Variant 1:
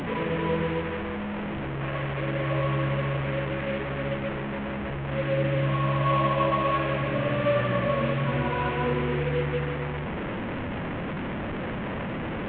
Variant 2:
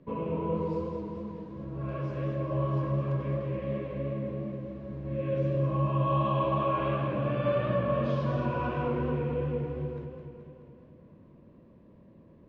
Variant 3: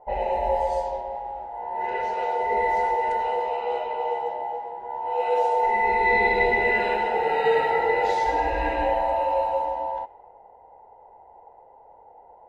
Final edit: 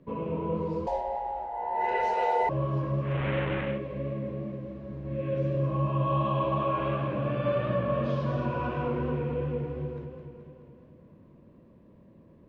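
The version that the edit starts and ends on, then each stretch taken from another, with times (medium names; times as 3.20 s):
2
0.87–2.49 s: from 3
3.13–3.70 s: from 1, crossfade 0.24 s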